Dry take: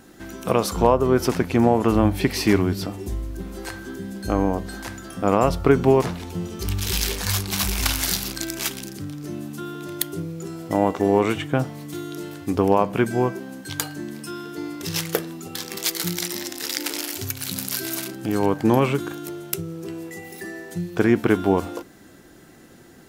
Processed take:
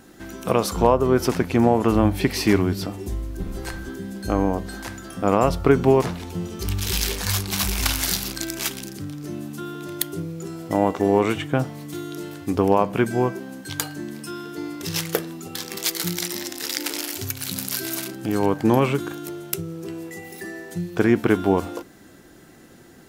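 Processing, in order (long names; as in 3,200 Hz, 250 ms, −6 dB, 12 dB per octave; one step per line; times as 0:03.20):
0:03.39–0:03.89: sub-octave generator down 2 octaves, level +3 dB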